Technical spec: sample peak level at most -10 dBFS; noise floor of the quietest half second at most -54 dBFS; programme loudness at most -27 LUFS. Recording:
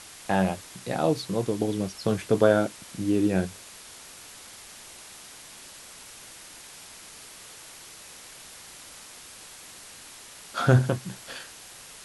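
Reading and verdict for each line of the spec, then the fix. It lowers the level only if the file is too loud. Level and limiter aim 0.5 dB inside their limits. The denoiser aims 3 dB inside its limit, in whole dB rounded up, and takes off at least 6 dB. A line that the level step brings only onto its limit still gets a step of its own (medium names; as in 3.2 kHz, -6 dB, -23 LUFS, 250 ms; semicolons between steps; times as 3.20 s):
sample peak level -5.5 dBFS: fail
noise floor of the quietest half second -46 dBFS: fail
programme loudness -26.0 LUFS: fail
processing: noise reduction 10 dB, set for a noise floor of -46 dBFS; trim -1.5 dB; peak limiter -10.5 dBFS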